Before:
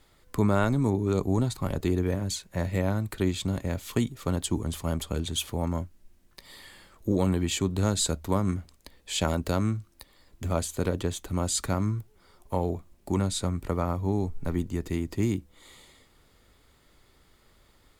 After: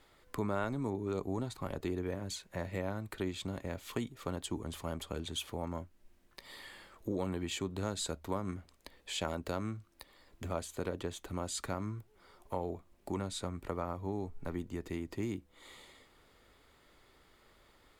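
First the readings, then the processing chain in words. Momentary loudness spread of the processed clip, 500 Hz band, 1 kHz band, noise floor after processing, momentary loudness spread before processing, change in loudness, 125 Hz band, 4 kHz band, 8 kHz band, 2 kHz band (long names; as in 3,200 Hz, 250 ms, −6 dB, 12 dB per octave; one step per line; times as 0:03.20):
13 LU, −8.0 dB, −7.5 dB, −66 dBFS, 7 LU, −10.5 dB, −13.5 dB, −8.0 dB, −11.5 dB, −7.0 dB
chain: bass and treble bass −7 dB, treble −6 dB
downward compressor 1.5 to 1, threshold −45 dBFS, peak gain reduction 9 dB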